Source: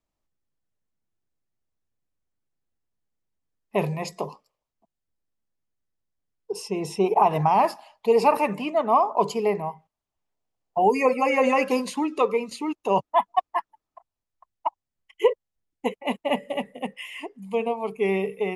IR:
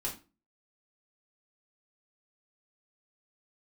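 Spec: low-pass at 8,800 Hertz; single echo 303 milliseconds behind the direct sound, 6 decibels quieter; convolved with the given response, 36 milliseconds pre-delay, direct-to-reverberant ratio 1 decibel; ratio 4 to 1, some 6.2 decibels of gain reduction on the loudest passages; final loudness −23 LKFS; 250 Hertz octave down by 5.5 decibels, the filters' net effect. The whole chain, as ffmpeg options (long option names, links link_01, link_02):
-filter_complex "[0:a]lowpass=8800,equalizer=frequency=250:width_type=o:gain=-7.5,acompressor=threshold=-22dB:ratio=4,aecho=1:1:303:0.501,asplit=2[link_01][link_02];[1:a]atrim=start_sample=2205,adelay=36[link_03];[link_02][link_03]afir=irnorm=-1:irlink=0,volume=-3dB[link_04];[link_01][link_04]amix=inputs=2:normalize=0,volume=2.5dB"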